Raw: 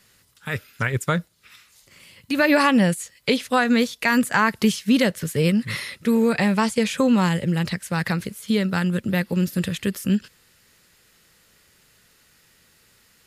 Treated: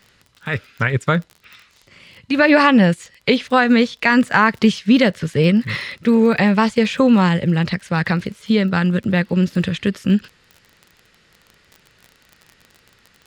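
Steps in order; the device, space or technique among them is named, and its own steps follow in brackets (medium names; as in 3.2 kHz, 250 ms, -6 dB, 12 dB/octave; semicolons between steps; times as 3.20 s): lo-fi chain (low-pass 4.3 kHz 12 dB/octave; wow and flutter 23 cents; crackle 32 per s -35 dBFS); trim +5 dB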